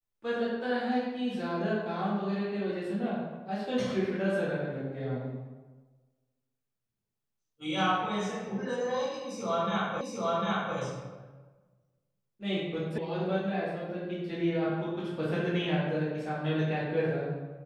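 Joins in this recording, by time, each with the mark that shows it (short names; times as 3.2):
10.01 repeat of the last 0.75 s
12.98 sound cut off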